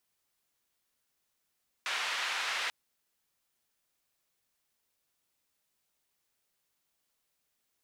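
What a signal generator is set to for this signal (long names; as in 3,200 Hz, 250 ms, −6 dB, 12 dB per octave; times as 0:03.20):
band-limited noise 1,100–2,800 Hz, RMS −34 dBFS 0.84 s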